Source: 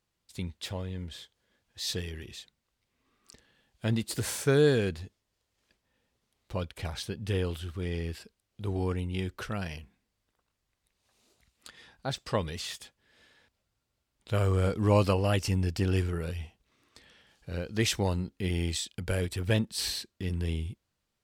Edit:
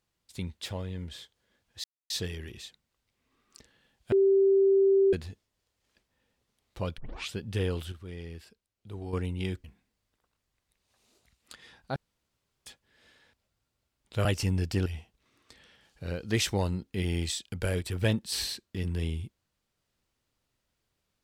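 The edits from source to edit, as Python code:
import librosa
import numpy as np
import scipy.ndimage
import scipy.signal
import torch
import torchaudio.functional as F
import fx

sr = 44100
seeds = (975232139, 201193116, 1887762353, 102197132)

y = fx.edit(x, sr, fx.insert_silence(at_s=1.84, length_s=0.26),
    fx.bleep(start_s=3.86, length_s=1.01, hz=390.0, db=-18.5),
    fx.tape_start(start_s=6.72, length_s=0.37),
    fx.clip_gain(start_s=7.66, length_s=1.21, db=-8.0),
    fx.cut(start_s=9.38, length_s=0.41),
    fx.room_tone_fill(start_s=12.11, length_s=0.7),
    fx.cut(start_s=14.4, length_s=0.9),
    fx.cut(start_s=15.91, length_s=0.41), tone=tone)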